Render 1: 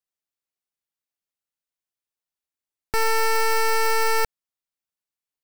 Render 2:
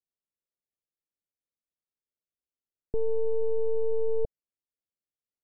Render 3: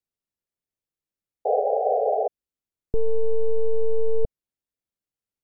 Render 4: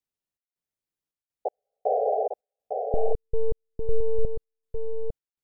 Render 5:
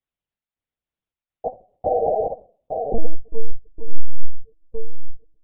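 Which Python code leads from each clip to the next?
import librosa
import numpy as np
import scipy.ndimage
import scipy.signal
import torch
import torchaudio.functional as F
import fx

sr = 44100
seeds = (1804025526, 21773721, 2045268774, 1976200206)

y1 = scipy.signal.sosfilt(scipy.signal.butter(8, 620.0, 'lowpass', fs=sr, output='sos'), x)
y1 = F.gain(torch.from_numpy(y1), -1.5).numpy()
y2 = fx.low_shelf(y1, sr, hz=380.0, db=8.0)
y2 = fx.spec_paint(y2, sr, seeds[0], shape='noise', start_s=1.45, length_s=0.83, low_hz=410.0, high_hz=820.0, level_db=-22.0)
y3 = fx.step_gate(y2, sr, bpm=81, pattern='xx.xxx.x..x', floor_db=-60.0, edge_ms=4.5)
y3 = y3 + 10.0 ** (-5.5 / 20.0) * np.pad(y3, (int(853 * sr / 1000.0), 0))[:len(y3)]
y3 = F.gain(torch.from_numpy(y3), -2.0).numpy()
y4 = fx.room_shoebox(y3, sr, seeds[1], volume_m3=410.0, walls='furnished', distance_m=0.43)
y4 = fx.lpc_vocoder(y4, sr, seeds[2], excitation='pitch_kept', order=10)
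y4 = F.gain(torch.from_numpy(y4), 3.5).numpy()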